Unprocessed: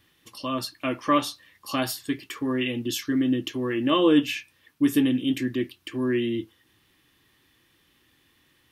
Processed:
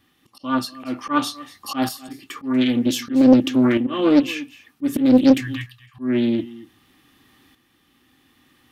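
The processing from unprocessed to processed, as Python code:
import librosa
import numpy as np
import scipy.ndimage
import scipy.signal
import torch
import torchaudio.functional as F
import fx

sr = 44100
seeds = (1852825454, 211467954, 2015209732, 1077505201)

p1 = fx.ellip_bandstop(x, sr, low_hz=130.0, high_hz=900.0, order=3, stop_db=40, at=(5.4, 5.99))
p2 = fx.auto_swell(p1, sr, attack_ms=179.0)
p3 = fx.small_body(p2, sr, hz=(250.0, 770.0, 1200.0), ring_ms=40, db=10)
p4 = 10.0 ** (-19.5 / 20.0) * np.tanh(p3 / 10.0 ** (-19.5 / 20.0))
p5 = p3 + F.gain(torch.from_numpy(p4), -11.0).numpy()
p6 = fx.tremolo_shape(p5, sr, shape='saw_up', hz=0.53, depth_pct=60)
p7 = p6 + fx.echo_single(p6, sr, ms=239, db=-18.5, dry=0)
p8 = fx.doppler_dist(p7, sr, depth_ms=0.59)
y = F.gain(torch.from_numpy(p8), 4.5).numpy()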